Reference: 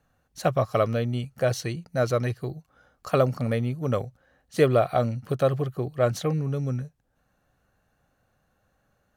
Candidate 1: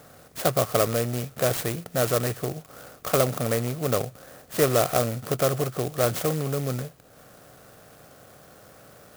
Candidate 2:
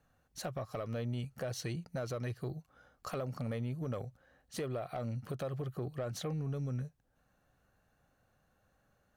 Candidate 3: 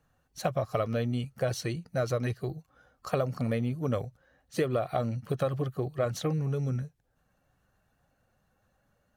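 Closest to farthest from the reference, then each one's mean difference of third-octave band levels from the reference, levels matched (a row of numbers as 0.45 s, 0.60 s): 3, 2, 1; 2.0 dB, 4.0 dB, 11.0 dB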